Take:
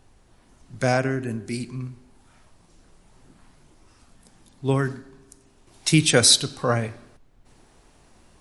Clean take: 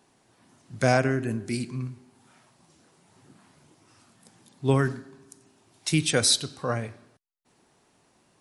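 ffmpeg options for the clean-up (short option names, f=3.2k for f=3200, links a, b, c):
-af "agate=range=-21dB:threshold=-49dB,asetnsamples=n=441:p=0,asendcmd='5.67 volume volume -6dB',volume=0dB"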